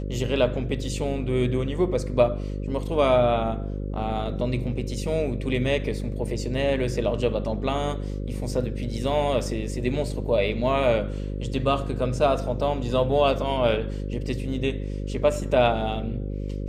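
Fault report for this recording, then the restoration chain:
mains buzz 50 Hz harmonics 11 −30 dBFS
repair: hum removal 50 Hz, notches 11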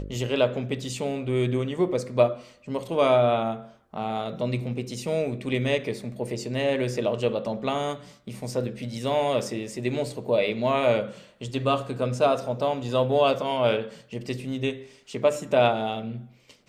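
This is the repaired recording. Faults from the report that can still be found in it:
none of them is left

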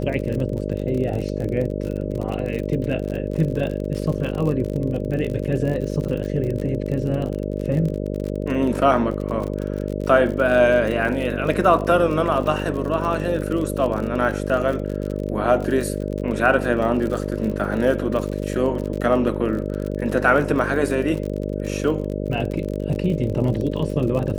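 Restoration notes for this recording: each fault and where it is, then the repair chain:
mains buzz 50 Hz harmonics 12 −26 dBFS
surface crackle 48 per second −27 dBFS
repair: click removal
hum removal 50 Hz, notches 12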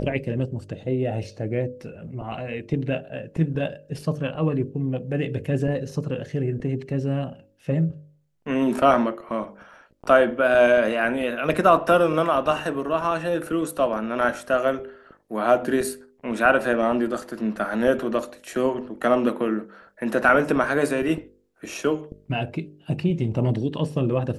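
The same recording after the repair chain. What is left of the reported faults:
none of them is left

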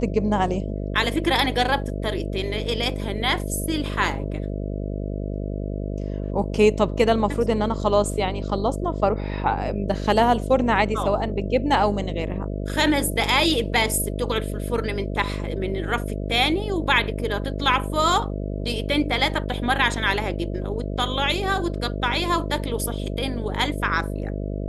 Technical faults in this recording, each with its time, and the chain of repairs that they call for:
mains buzz 50 Hz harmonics 13 −28 dBFS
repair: hum removal 50 Hz, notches 13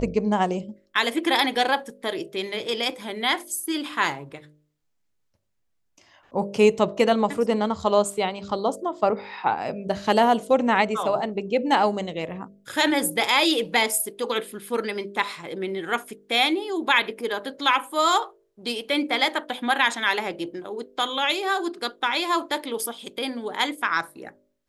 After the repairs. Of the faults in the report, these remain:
none of them is left

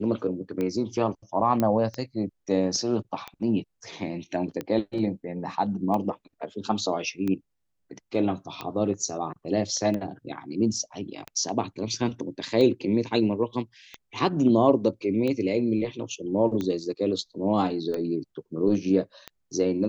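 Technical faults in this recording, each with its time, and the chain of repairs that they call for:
scratch tick 45 rpm −18 dBFS
0:01.60: click −12 dBFS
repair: click removal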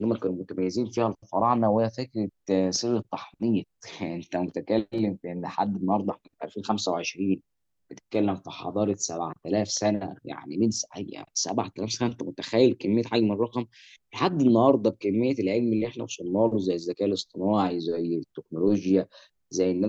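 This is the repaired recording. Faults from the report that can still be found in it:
0:01.60: click

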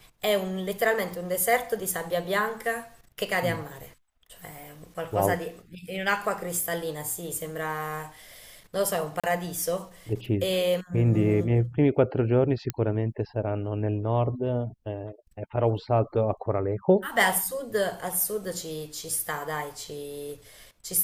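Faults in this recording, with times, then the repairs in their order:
0:09.20–0:09.24: drop-out 36 ms
0:12.70: click −13 dBFS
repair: click removal
repair the gap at 0:09.20, 36 ms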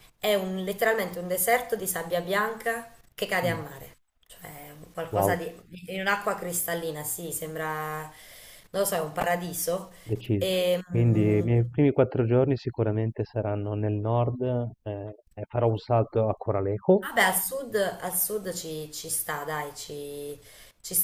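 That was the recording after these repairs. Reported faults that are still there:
none of them is left

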